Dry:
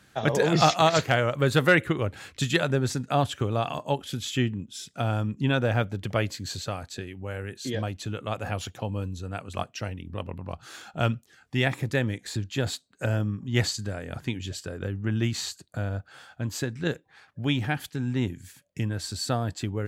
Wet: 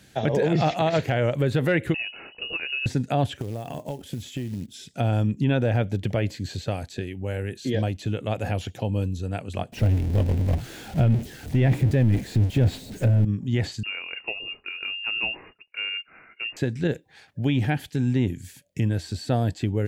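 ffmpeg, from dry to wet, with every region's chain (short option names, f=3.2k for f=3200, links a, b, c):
-filter_complex "[0:a]asettb=1/sr,asplit=3[a][b][c];[a]atrim=end=1.944[d];[b]atrim=start=1.94:end=2.86,asetpts=PTS-STARTPTS,afade=t=in:d=0.004:c=qsin,afade=t=out:st=0.916:d=0.004:c=qsin,equalizer=f=390:t=o:w=0.29:g=14,acompressor=threshold=-31dB:ratio=3:attack=3.2:release=140:knee=1:detection=peak,lowpass=f=2.6k:t=q:w=0.5098,lowpass=f=2.6k:t=q:w=0.6013,lowpass=f=2.6k:t=q:w=0.9,lowpass=f=2.6k:t=q:w=2.563,afreqshift=-3000[e];[c]atrim=start=2.856[f];[d][e]acrossfade=d=0.004:c1=hsin:c2=qsin[g];[g][f]acrossfade=d=0.004:c1=qsin:c2=hsin,asettb=1/sr,asplit=3[h][i][j];[h]atrim=end=3.374[k];[i]atrim=start=3.37:end=4.74,asetpts=PTS-STARTPTS,afade=t=in:d=0.004:c=qsin,afade=t=out:st=1.366:d=0.004:c=qsin,equalizer=f=3.4k:w=0.48:g=-8.5,acompressor=threshold=-31dB:ratio=16:attack=3.2:release=140:knee=1:detection=peak,acrusher=bits=5:mode=log:mix=0:aa=0.000001[l];[j]atrim=start=4.736[m];[k][l]acrossfade=d=0.004:c1=hsin:c2=qsin[n];[n][m]acrossfade=d=0.004:c1=qsin:c2=hsin,asettb=1/sr,asplit=3[o][p][q];[o]atrim=end=9.724[r];[p]atrim=start=9.72:end=13.25,asetpts=PTS-STARTPTS,afade=t=in:d=0.004:c=qsin,afade=t=out:st=3.526:d=0.004:c=qsin,aeval=exprs='val(0)+0.5*0.0631*sgn(val(0))':c=same,agate=range=-33dB:threshold=-21dB:ratio=3:release=100:detection=peak,lowshelf=f=410:g=11[s];[q]atrim=start=13.246[t];[r][s]acrossfade=d=0.004:c1=hsin:c2=qsin[u];[u][t]acrossfade=d=0.004:c1=qsin:c2=hsin,asettb=1/sr,asplit=3[v][w][x];[v]atrim=end=13.834[y];[w]atrim=start=13.83:end=16.57,asetpts=PTS-STARTPTS,afade=t=in:d=0.004:c=qsin,afade=t=out:st=2.736:d=0.004:c=qsin,equalizer=f=170:t=o:w=0.74:g=-9,lowpass=f=2.5k:t=q:w=0.5098,lowpass=f=2.5k:t=q:w=0.6013,lowpass=f=2.5k:t=q:w=0.9,lowpass=f=2.5k:t=q:w=2.563,afreqshift=-2900[z];[x]atrim=start=16.566[aa];[y][z]acrossfade=d=0.004:c1=hsin:c2=qsin[ab];[ab][aa]acrossfade=d=0.004:c1=qsin:c2=hsin,acrossover=split=2800[ac][ad];[ad]acompressor=threshold=-49dB:ratio=4:attack=1:release=60[ae];[ac][ae]amix=inputs=2:normalize=0,equalizer=f=1.2k:w=1.9:g=-12.5,alimiter=limit=-19dB:level=0:latency=1:release=65,volume=6dB"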